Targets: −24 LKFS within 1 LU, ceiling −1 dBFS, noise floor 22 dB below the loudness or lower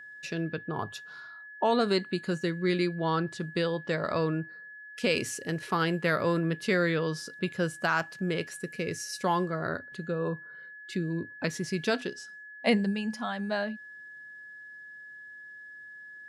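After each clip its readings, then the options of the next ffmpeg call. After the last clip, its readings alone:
interfering tone 1,700 Hz; level of the tone −44 dBFS; integrated loudness −30.5 LKFS; sample peak −14.5 dBFS; target loudness −24.0 LKFS
→ -af "bandreject=frequency=1700:width=30"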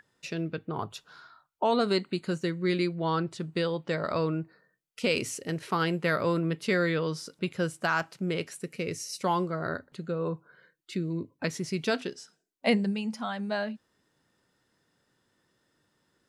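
interfering tone none found; integrated loudness −30.5 LKFS; sample peak −14.5 dBFS; target loudness −24.0 LKFS
→ -af "volume=6.5dB"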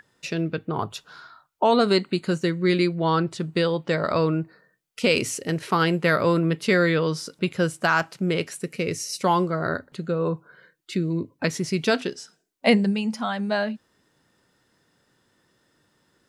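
integrated loudness −24.0 LKFS; sample peak −8.0 dBFS; background noise floor −68 dBFS

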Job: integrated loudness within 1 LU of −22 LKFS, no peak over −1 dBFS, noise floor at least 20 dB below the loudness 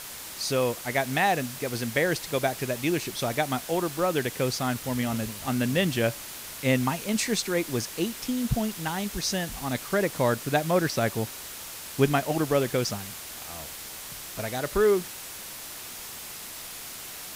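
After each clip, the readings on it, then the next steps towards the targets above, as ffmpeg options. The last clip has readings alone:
background noise floor −40 dBFS; target noise floor −48 dBFS; integrated loudness −28.0 LKFS; sample peak −7.0 dBFS; target loudness −22.0 LKFS
→ -af "afftdn=noise_reduction=8:noise_floor=-40"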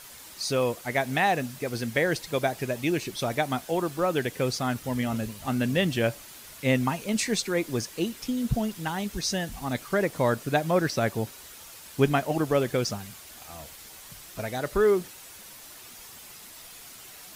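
background noise floor −47 dBFS; target noise floor −48 dBFS
→ -af "afftdn=noise_reduction=6:noise_floor=-47"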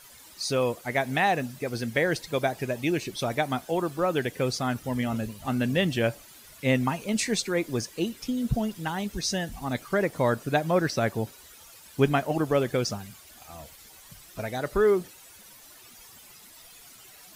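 background noise floor −51 dBFS; integrated loudness −27.5 LKFS; sample peak −8.0 dBFS; target loudness −22.0 LKFS
→ -af "volume=5.5dB"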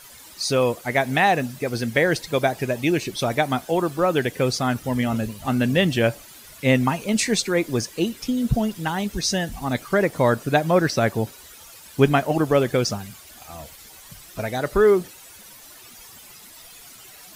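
integrated loudness −22.0 LKFS; sample peak −2.5 dBFS; background noise floor −45 dBFS

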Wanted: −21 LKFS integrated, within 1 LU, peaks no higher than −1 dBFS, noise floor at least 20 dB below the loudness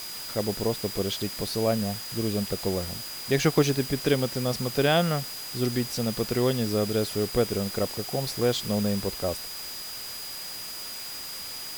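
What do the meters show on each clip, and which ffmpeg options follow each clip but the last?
interfering tone 4,900 Hz; level of the tone −38 dBFS; background noise floor −37 dBFS; target noise floor −48 dBFS; integrated loudness −27.5 LKFS; sample peak −8.0 dBFS; target loudness −21.0 LKFS
→ -af "bandreject=frequency=4900:width=30"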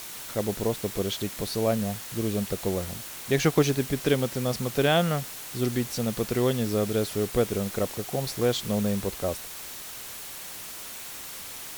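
interfering tone none found; background noise floor −40 dBFS; target noise floor −48 dBFS
→ -af "afftdn=noise_reduction=8:noise_floor=-40"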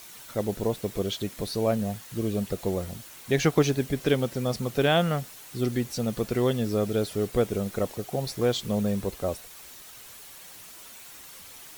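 background noise floor −46 dBFS; target noise floor −48 dBFS
→ -af "afftdn=noise_reduction=6:noise_floor=-46"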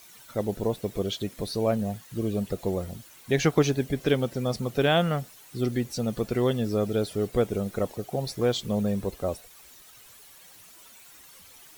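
background noise floor −51 dBFS; integrated loudness −28.0 LKFS; sample peak −8.5 dBFS; target loudness −21.0 LKFS
→ -af "volume=7dB"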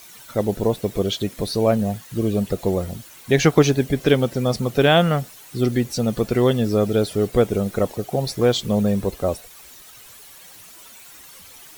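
integrated loudness −21.0 LKFS; sample peak −1.5 dBFS; background noise floor −44 dBFS

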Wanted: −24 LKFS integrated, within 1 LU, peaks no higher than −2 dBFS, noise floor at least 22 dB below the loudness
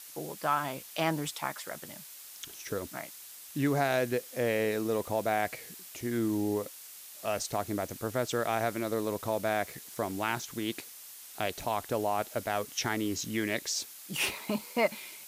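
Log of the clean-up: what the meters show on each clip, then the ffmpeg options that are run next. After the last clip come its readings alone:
background noise floor −48 dBFS; target noise floor −55 dBFS; integrated loudness −32.5 LKFS; sample peak −15.0 dBFS; target loudness −24.0 LKFS
→ -af "afftdn=noise_reduction=7:noise_floor=-48"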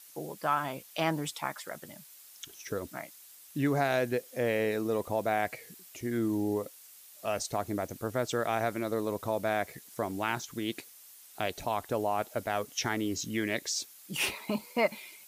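background noise floor −54 dBFS; target noise floor −55 dBFS
→ -af "afftdn=noise_reduction=6:noise_floor=-54"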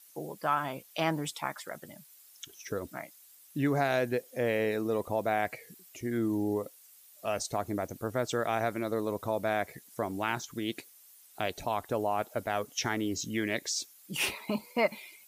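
background noise floor −57 dBFS; integrated loudness −32.5 LKFS; sample peak −15.0 dBFS; target loudness −24.0 LKFS
→ -af "volume=8.5dB"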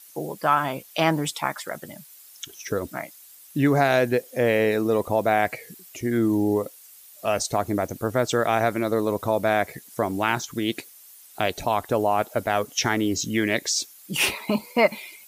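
integrated loudness −24.0 LKFS; sample peak −6.5 dBFS; background noise floor −49 dBFS

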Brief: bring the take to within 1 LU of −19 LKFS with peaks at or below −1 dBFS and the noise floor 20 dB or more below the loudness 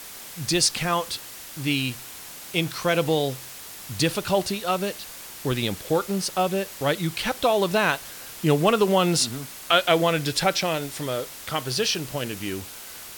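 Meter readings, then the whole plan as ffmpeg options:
background noise floor −40 dBFS; target noise floor −44 dBFS; integrated loudness −24.0 LKFS; sample peak −6.5 dBFS; target loudness −19.0 LKFS
→ -af "afftdn=noise_reduction=6:noise_floor=-40"
-af "volume=5dB"

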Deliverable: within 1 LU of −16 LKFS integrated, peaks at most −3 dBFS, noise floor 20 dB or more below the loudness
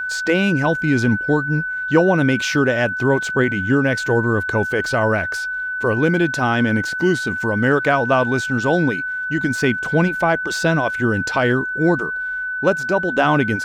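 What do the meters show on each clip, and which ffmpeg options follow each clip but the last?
interfering tone 1,500 Hz; level of the tone −22 dBFS; integrated loudness −18.5 LKFS; sample peak −3.0 dBFS; target loudness −16.0 LKFS
→ -af "bandreject=frequency=1500:width=30"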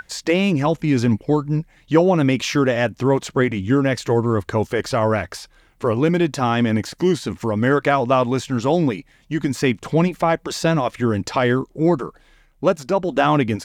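interfering tone none found; integrated loudness −20.0 LKFS; sample peak −3.5 dBFS; target loudness −16.0 LKFS
→ -af "volume=4dB,alimiter=limit=-3dB:level=0:latency=1"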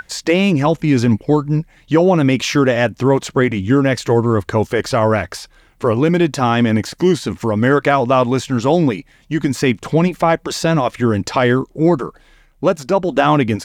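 integrated loudness −16.0 LKFS; sample peak −3.0 dBFS; background noise floor −51 dBFS

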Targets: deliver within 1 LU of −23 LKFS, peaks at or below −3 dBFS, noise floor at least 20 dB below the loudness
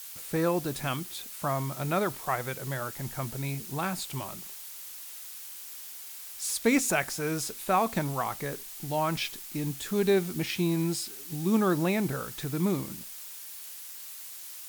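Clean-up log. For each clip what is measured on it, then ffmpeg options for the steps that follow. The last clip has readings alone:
background noise floor −43 dBFS; target noise floor −51 dBFS; integrated loudness −31.0 LKFS; sample peak −12.0 dBFS; target loudness −23.0 LKFS
→ -af "afftdn=noise_reduction=8:noise_floor=-43"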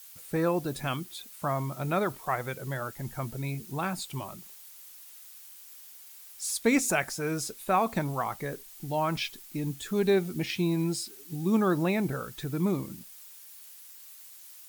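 background noise floor −50 dBFS; target noise floor −51 dBFS
→ -af "afftdn=noise_reduction=6:noise_floor=-50"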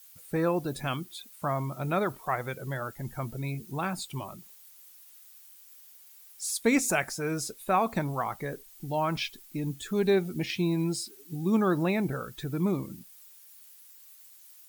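background noise floor −54 dBFS; integrated loudness −30.5 LKFS; sample peak −12.0 dBFS; target loudness −23.0 LKFS
→ -af "volume=7.5dB"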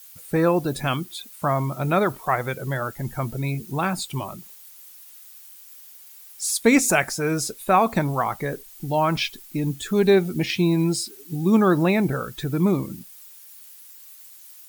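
integrated loudness −23.0 LKFS; sample peak −4.5 dBFS; background noise floor −46 dBFS

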